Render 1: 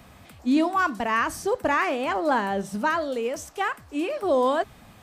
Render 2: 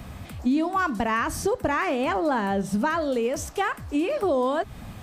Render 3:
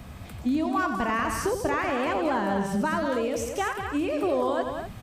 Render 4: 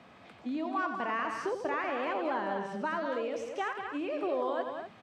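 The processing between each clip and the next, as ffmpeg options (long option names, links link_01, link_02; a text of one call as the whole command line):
ffmpeg -i in.wav -af "lowshelf=frequency=210:gain=10,acompressor=threshold=-27dB:ratio=4,volume=5dB" out.wav
ffmpeg -i in.wav -af "aecho=1:1:90.38|192.4|247.8:0.355|0.447|0.316,volume=-3dB" out.wav
ffmpeg -i in.wav -af "highpass=310,lowpass=3700,volume=-5.5dB" out.wav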